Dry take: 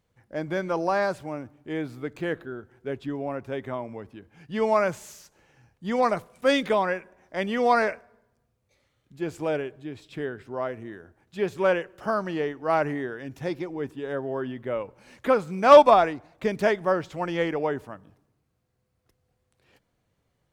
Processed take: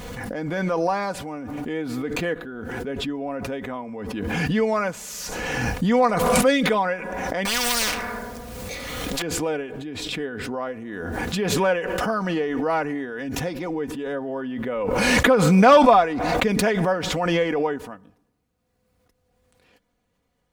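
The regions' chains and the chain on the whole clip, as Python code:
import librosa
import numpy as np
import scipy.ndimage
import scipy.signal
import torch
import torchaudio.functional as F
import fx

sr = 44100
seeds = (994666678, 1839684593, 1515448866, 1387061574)

y = fx.chain(x, sr, fx.law_mismatch(coded='mu'),
    fx.spectral_comp(ratio=10.0), at=(7.45, 9.22))
y = y + 0.57 * np.pad(y, (int(4.1 * sr / 1000.0), 0))[:len(y)]
y = fx.pre_swell(y, sr, db_per_s=22.0)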